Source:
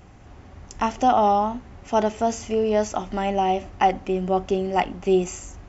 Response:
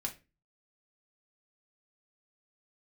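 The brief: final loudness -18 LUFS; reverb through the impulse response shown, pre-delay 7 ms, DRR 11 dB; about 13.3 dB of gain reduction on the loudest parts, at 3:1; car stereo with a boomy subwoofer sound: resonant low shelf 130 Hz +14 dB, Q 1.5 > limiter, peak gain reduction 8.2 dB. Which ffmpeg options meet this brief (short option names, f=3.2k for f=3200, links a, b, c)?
-filter_complex "[0:a]acompressor=threshold=-33dB:ratio=3,asplit=2[a][b];[1:a]atrim=start_sample=2205,adelay=7[c];[b][c]afir=irnorm=-1:irlink=0,volume=-11.5dB[d];[a][d]amix=inputs=2:normalize=0,lowshelf=f=130:t=q:w=1.5:g=14,volume=16.5dB,alimiter=limit=-7.5dB:level=0:latency=1"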